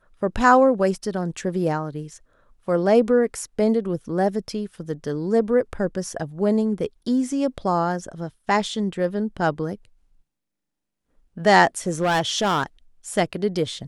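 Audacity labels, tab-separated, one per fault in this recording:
11.880000	12.630000	clipped -16.5 dBFS

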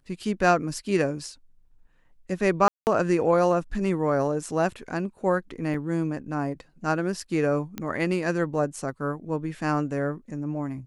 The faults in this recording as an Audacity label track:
2.680000	2.870000	dropout 189 ms
5.740000	5.740000	dropout 2.7 ms
7.780000	7.780000	pop -17 dBFS

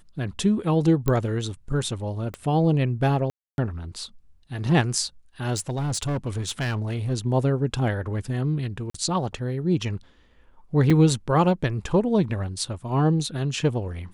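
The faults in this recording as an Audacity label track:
1.080000	1.080000	pop -10 dBFS
2.340000	2.340000	pop -20 dBFS
3.300000	3.580000	dropout 281 ms
5.540000	7.120000	clipped -22.5 dBFS
8.900000	8.940000	dropout 44 ms
10.900000	10.900000	dropout 3.9 ms

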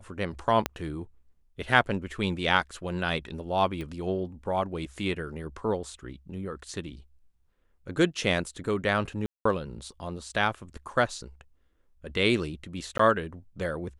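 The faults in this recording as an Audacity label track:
0.660000	0.660000	pop -11 dBFS
3.810000	3.810000	pop -25 dBFS
9.260000	9.450000	dropout 194 ms
12.980000	12.990000	dropout 14 ms

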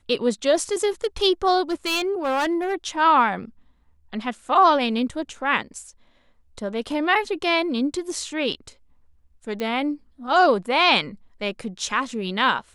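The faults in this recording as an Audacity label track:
1.700000	2.740000	clipped -19 dBFS
9.600000	9.600000	pop -16 dBFS

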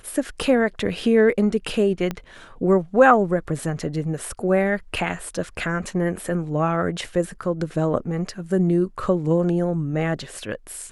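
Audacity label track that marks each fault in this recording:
2.110000	2.110000	pop -13 dBFS

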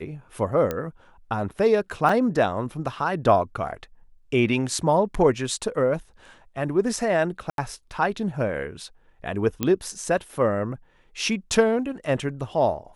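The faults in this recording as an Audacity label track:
0.710000	0.710000	pop -13 dBFS
2.090000	2.090000	dropout 3.3 ms
7.500000	7.580000	dropout 82 ms
9.630000	9.630000	pop -9 dBFS

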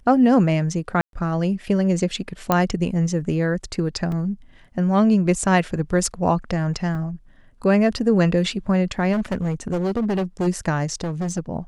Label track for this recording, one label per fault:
1.010000	1.130000	dropout 122 ms
2.520000	2.520000	pop -4 dBFS
4.120000	4.120000	dropout 2.4 ms
6.950000	6.950000	dropout 2.7 ms
9.120000	10.480000	clipped -18.5 dBFS
11.010000	11.390000	clipped -21.5 dBFS

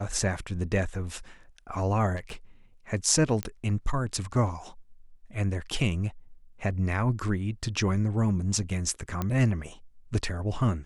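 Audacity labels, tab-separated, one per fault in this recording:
2.160000	2.350000	clipped -31.5 dBFS
3.430000	3.430000	pop -15 dBFS
9.220000	9.220000	pop -16 dBFS

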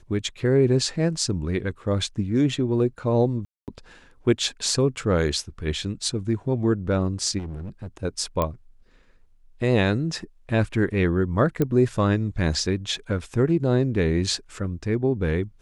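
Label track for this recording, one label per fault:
3.450000	3.680000	dropout 228 ms
7.380000	7.870000	clipped -30 dBFS
8.420000	8.420000	pop -11 dBFS
11.620000	11.620000	pop -11 dBFS

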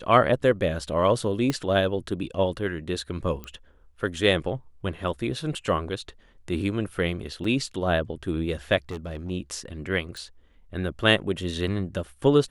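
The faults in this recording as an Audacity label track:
1.500000	1.500000	pop -12 dBFS
3.440000	3.440000	pop -22 dBFS
7.440000	7.440000	dropout 4.1 ms
8.890000	9.310000	clipped -29 dBFS
10.170000	10.170000	pop

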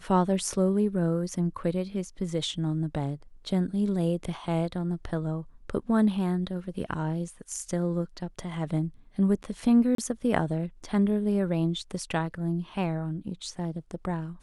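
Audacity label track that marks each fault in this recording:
9.950000	9.980000	dropout 33 ms

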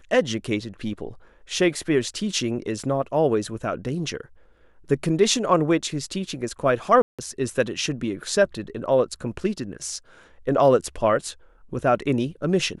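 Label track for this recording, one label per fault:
7.020000	7.190000	dropout 166 ms

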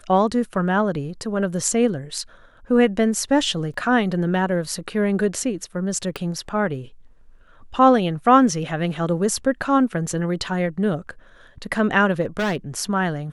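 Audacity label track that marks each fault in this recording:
3.740000	3.740000	dropout 2.5 ms
6.160000	6.160000	pop -14 dBFS
12.210000	12.570000	clipped -19 dBFS

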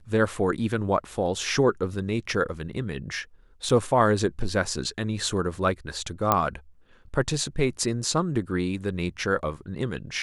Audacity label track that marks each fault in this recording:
3.690000	3.690000	dropout 5 ms
6.320000	6.320000	pop -6 dBFS

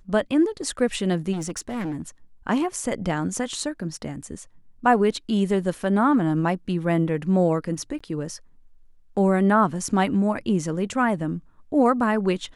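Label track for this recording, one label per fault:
1.320000	2.080000	clipped -25 dBFS
7.990000	8.010000	dropout 15 ms

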